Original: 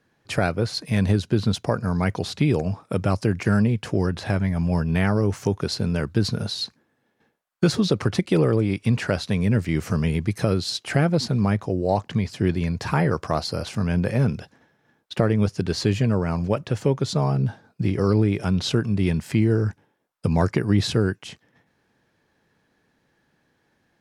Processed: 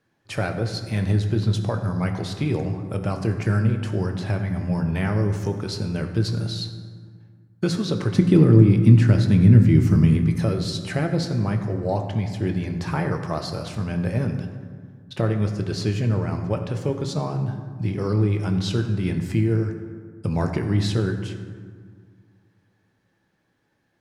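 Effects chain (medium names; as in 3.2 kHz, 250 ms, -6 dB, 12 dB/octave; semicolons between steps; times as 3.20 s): 8.15–10.17 s: resonant low shelf 390 Hz +8.5 dB, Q 1.5; reverberation RT60 1.8 s, pre-delay 4 ms, DRR 4.5 dB; trim -4.5 dB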